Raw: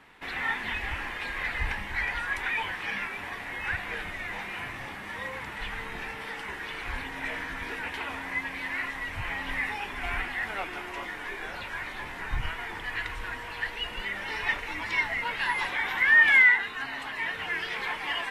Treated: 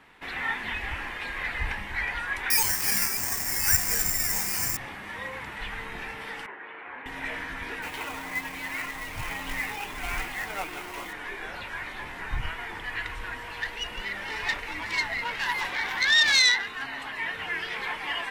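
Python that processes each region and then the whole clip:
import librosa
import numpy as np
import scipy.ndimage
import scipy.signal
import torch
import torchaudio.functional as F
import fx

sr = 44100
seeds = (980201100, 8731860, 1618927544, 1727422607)

y = fx.chain(x, sr, fx.lowpass(hz=9500.0, slope=12),
    fx.bass_treble(bass_db=7, treble_db=-7),
    fx.resample_bad(factor=6, down='none', up='zero_stuff'), at=(2.5, 4.77))
y = fx.chain(y, sr, fx.bandpass_edges(low_hz=360.0, high_hz=2800.0),
    fx.air_absorb(metres=480.0), at=(6.46, 7.06))
y = fx.chain(y, sr, fx.peak_eq(hz=1700.0, db=-5.0, octaves=0.36),
    fx.quant_companded(bits=4),
    fx.comb(ms=6.5, depth=0.31), at=(7.82, 11.13))
y = fx.chain(y, sr, fx.self_delay(depth_ms=0.14),
    fx.high_shelf(hz=10000.0, db=4.5), at=(13.36, 16.87))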